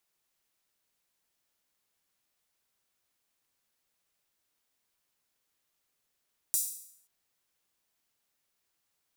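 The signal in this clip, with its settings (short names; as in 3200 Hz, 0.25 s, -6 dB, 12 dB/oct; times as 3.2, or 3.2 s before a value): open hi-hat length 0.53 s, high-pass 7800 Hz, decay 0.68 s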